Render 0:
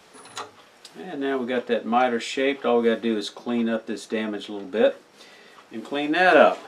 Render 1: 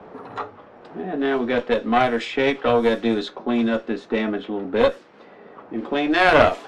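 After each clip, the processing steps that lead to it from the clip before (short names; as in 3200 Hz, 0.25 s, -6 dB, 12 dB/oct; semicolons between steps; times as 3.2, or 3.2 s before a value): low-pass opened by the level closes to 830 Hz, open at -16.5 dBFS; added harmonics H 3 -19 dB, 4 -14 dB, 5 -26 dB, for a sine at -1 dBFS; three-band squash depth 40%; gain +3.5 dB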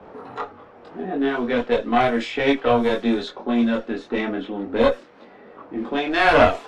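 chorus voices 6, 0.83 Hz, delay 23 ms, depth 2.3 ms; gain +2.5 dB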